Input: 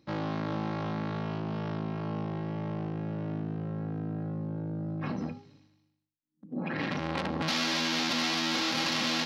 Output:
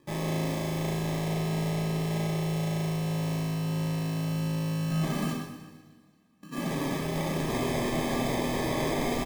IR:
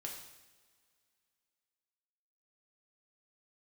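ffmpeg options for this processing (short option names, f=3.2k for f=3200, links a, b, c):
-filter_complex "[0:a]asettb=1/sr,asplit=3[a][b][c];[a]atrim=end=4.904[d];[b]atrim=start=4.9:end=5.33,asetpts=PTS-STARTPTS,afade=t=in:d=0.004:c=qsin,afade=t=out:st=0.426:d=0.004:c=qsin,lowshelf=f=130:t=q:w=3:g=-12[e];[c]atrim=start=5.326[f];[d][e]acrossfade=d=0.004:c1=hsin:c2=qsin[g];[g][f]acrossfade=d=0.004:c1=qsin:c2=hsin,acrusher=samples=31:mix=1:aa=0.000001,asoftclip=type=tanh:threshold=-30dB,aecho=1:1:123|246|369|492|615:0.224|0.112|0.056|0.028|0.014[h];[1:a]atrim=start_sample=2205[i];[h][i]afir=irnorm=-1:irlink=0,volume=7.5dB"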